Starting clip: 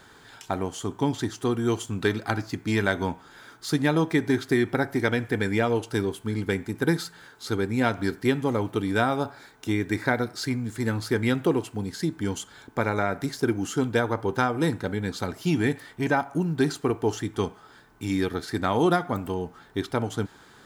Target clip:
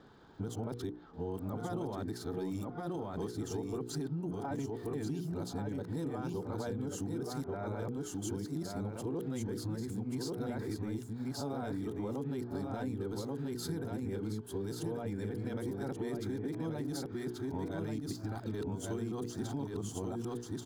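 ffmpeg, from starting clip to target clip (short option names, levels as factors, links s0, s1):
-filter_complex "[0:a]areverse,bandreject=f=60:t=h:w=6,bandreject=f=120:t=h:w=6,bandreject=f=180:t=h:w=6,bandreject=f=240:t=h:w=6,bandreject=f=300:t=h:w=6,bandreject=f=360:t=h:w=6,bandreject=f=420:t=h:w=6,bandreject=f=480:t=h:w=6,alimiter=limit=0.0891:level=0:latency=1:release=10,acrossover=split=4400[s0][s1];[s1]aeval=exprs='sgn(val(0))*max(abs(val(0))-0.00126,0)':c=same[s2];[s0][s2]amix=inputs=2:normalize=0,equalizer=f=2100:w=0.73:g=-13.5,aecho=1:1:1134:0.631,acompressor=threshold=0.0251:ratio=6,volume=0.794"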